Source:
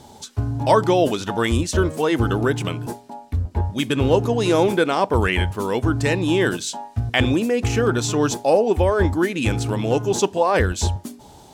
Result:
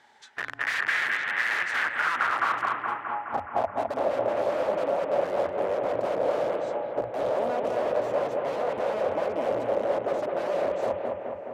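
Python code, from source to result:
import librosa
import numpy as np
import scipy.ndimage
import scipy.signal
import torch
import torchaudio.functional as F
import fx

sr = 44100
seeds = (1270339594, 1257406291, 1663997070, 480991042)

y = (np.mod(10.0 ** (17.5 / 20.0) * x + 1.0, 2.0) - 1.0) / 10.0 ** (17.5 / 20.0)
y = fx.filter_sweep_bandpass(y, sr, from_hz=1800.0, to_hz=570.0, start_s=1.55, end_s=4.01, q=5.7)
y = fx.echo_bbd(y, sr, ms=210, stages=4096, feedback_pct=68, wet_db=-4)
y = y * 10.0 ** (7.0 / 20.0)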